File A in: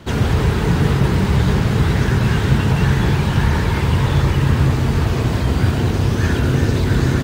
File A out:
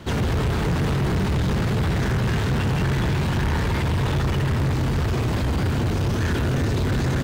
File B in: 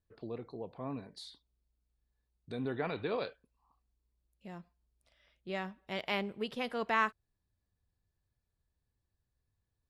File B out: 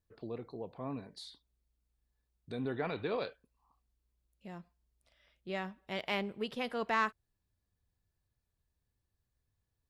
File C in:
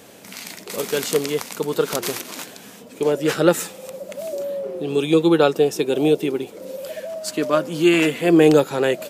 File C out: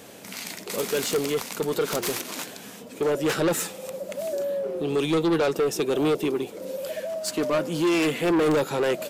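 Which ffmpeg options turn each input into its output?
ffmpeg -i in.wav -af "asoftclip=type=tanh:threshold=-18.5dB" out.wav

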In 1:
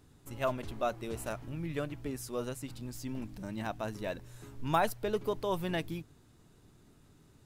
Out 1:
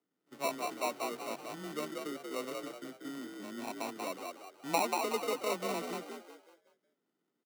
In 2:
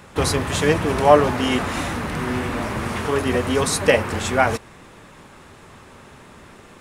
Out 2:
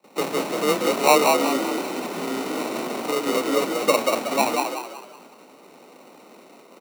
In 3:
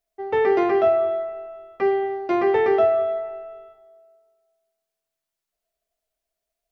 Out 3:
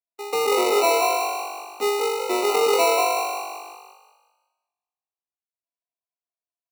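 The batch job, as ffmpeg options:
ffmpeg -i in.wav -filter_complex "[0:a]lowpass=frequency=1400:width=0.5412,lowpass=frequency=1400:width=1.3066,acrusher=samples=27:mix=1:aa=0.000001,highpass=frequency=200:width=0.5412,highpass=frequency=200:width=1.3066,agate=range=-17dB:threshold=-48dB:ratio=16:detection=peak,afreqshift=17,asplit=2[link_01][link_02];[link_02]asplit=5[link_03][link_04][link_05][link_06][link_07];[link_03]adelay=186,afreqshift=49,volume=-3.5dB[link_08];[link_04]adelay=372,afreqshift=98,volume=-11.7dB[link_09];[link_05]adelay=558,afreqshift=147,volume=-19.9dB[link_10];[link_06]adelay=744,afreqshift=196,volume=-28dB[link_11];[link_07]adelay=930,afreqshift=245,volume=-36.2dB[link_12];[link_08][link_09][link_10][link_11][link_12]amix=inputs=5:normalize=0[link_13];[link_01][link_13]amix=inputs=2:normalize=0,volume=-2.5dB" out.wav

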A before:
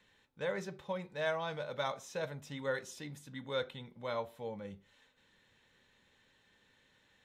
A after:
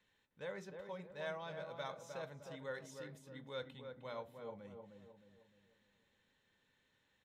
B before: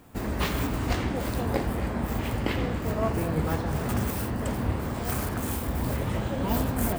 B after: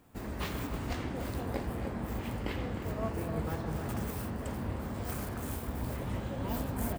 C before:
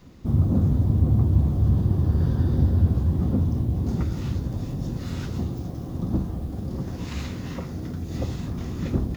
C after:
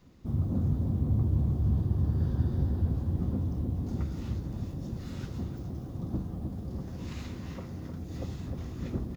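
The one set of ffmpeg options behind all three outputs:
ffmpeg -i in.wav -filter_complex "[0:a]asplit=2[link_01][link_02];[link_02]adelay=308,lowpass=frequency=1200:poles=1,volume=-5dB,asplit=2[link_03][link_04];[link_04]adelay=308,lowpass=frequency=1200:poles=1,volume=0.46,asplit=2[link_05][link_06];[link_06]adelay=308,lowpass=frequency=1200:poles=1,volume=0.46,asplit=2[link_07][link_08];[link_08]adelay=308,lowpass=frequency=1200:poles=1,volume=0.46,asplit=2[link_09][link_10];[link_10]adelay=308,lowpass=frequency=1200:poles=1,volume=0.46,asplit=2[link_11][link_12];[link_12]adelay=308,lowpass=frequency=1200:poles=1,volume=0.46[link_13];[link_01][link_03][link_05][link_07][link_09][link_11][link_13]amix=inputs=7:normalize=0,volume=-9dB" out.wav

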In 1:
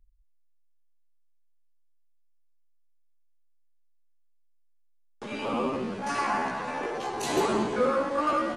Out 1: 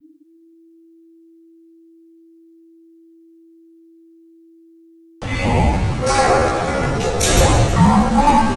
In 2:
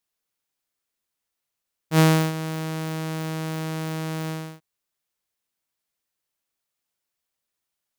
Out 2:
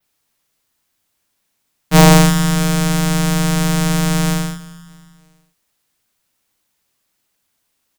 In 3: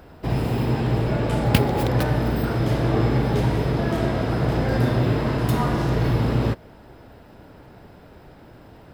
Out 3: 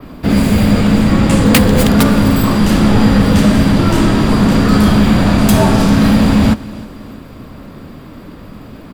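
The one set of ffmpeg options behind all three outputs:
ffmpeg -i in.wav -filter_complex "[0:a]adynamicequalizer=threshold=0.00224:dfrequency=8200:dqfactor=0.98:tfrequency=8200:tqfactor=0.98:attack=5:release=100:ratio=0.375:range=3.5:mode=boostabove:tftype=bell,acrossover=split=630[link_01][link_02];[link_01]asoftclip=type=tanh:threshold=-18dB[link_03];[link_03][link_02]amix=inputs=2:normalize=0,afreqshift=-330,aecho=1:1:315|630|945:0.1|0.043|0.0185,apsyclip=15dB,volume=-1.5dB" out.wav

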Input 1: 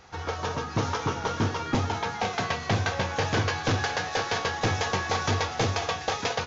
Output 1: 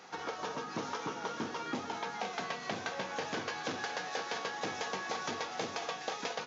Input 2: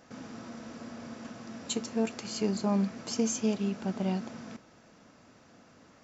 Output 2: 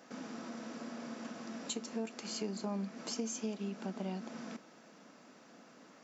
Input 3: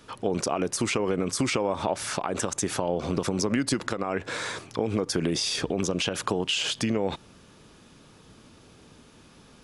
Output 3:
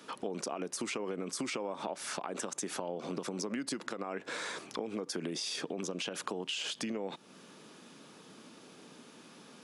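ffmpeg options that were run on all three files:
ffmpeg -i in.wav -af "highpass=frequency=180:width=0.5412,highpass=frequency=180:width=1.3066,acompressor=threshold=-39dB:ratio=2.5" out.wav

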